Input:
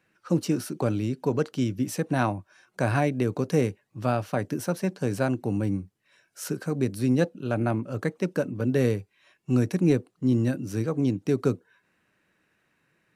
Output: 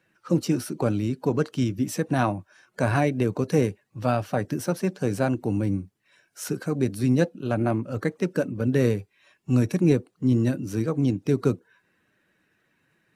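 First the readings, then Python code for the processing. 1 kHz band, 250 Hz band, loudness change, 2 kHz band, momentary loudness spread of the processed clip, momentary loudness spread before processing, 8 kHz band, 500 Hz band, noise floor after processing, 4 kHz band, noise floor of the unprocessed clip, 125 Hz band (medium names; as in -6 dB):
+1.5 dB, +1.5 dB, +1.5 dB, +1.0 dB, 6 LU, 6 LU, +1.5 dB, +1.5 dB, -70 dBFS, +1.5 dB, -71 dBFS, +2.0 dB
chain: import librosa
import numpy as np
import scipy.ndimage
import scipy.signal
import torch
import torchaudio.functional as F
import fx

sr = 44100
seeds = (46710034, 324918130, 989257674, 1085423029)

y = fx.spec_quant(x, sr, step_db=15)
y = y * 10.0 ** (2.0 / 20.0)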